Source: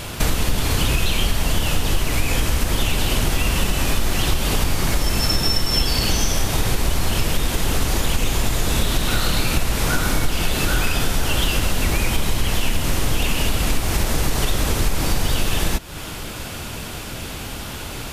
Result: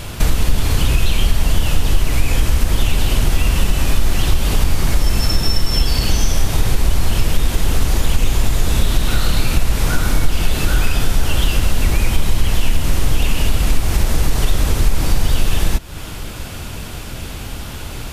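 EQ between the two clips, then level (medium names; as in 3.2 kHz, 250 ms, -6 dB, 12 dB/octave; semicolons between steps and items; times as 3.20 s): bass shelf 110 Hz +8.5 dB; -1.0 dB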